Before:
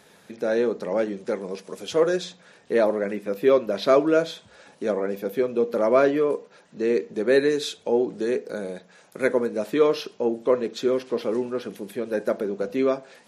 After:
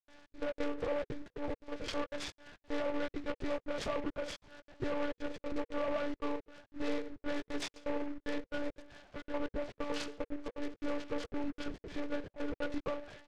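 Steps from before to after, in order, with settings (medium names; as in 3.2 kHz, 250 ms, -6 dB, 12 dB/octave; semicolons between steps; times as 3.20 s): single-diode clipper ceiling -15 dBFS; hum notches 50/100/150/200/250/300/350/400/450 Hz; comb 4.2 ms, depth 99%; compression 12:1, threshold -21 dBFS, peak gain reduction 11.5 dB; trance gate ".xx.xx.xxxxx" 176 bpm -60 dB; peak limiter -21.5 dBFS, peak gain reduction 10 dB; monotone LPC vocoder at 8 kHz 290 Hz; delay time shaken by noise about 1.3 kHz, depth 0.058 ms; trim -5 dB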